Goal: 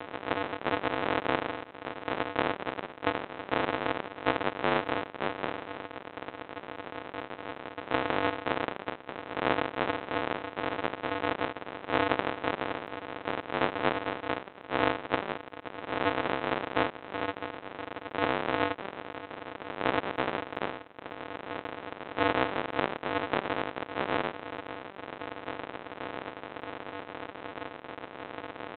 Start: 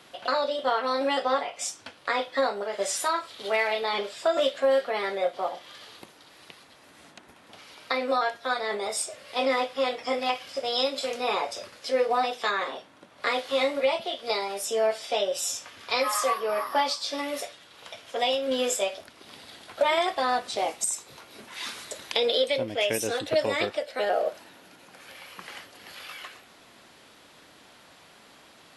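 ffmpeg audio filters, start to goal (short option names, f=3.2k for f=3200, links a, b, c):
-af "aeval=exprs='val(0)+0.5*0.0473*sgn(val(0))':c=same,aresample=8000,acrusher=samples=41:mix=1:aa=0.000001,aresample=44100,highpass=450,lowpass=2.5k,volume=6.5dB"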